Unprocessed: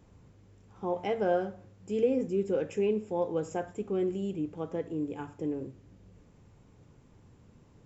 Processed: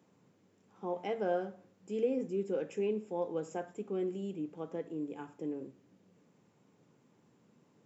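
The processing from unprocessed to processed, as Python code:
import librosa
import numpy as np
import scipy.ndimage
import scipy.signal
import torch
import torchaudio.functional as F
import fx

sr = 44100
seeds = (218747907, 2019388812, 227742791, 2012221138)

y = scipy.signal.sosfilt(scipy.signal.butter(4, 160.0, 'highpass', fs=sr, output='sos'), x)
y = y * 10.0 ** (-5.0 / 20.0)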